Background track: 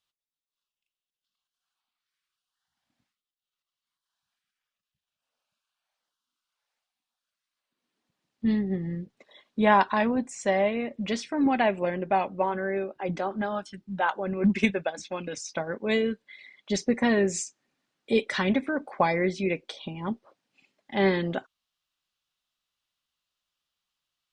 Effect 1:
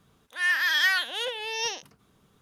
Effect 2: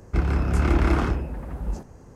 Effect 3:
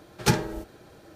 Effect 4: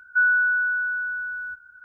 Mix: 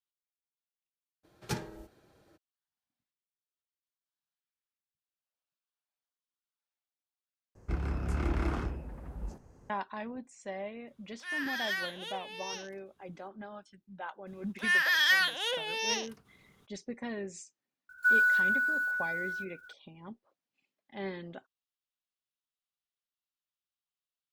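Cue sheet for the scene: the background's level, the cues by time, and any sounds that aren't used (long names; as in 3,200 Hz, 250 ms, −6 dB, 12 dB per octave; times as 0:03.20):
background track −15.5 dB
0:01.23: mix in 3 −13.5 dB, fades 0.02 s
0:07.55: overwrite with 2 −11 dB
0:10.87: mix in 1 −11.5 dB
0:14.26: mix in 1 −2 dB, fades 0.02 s
0:17.89: mix in 4 −5 dB + one scale factor per block 5 bits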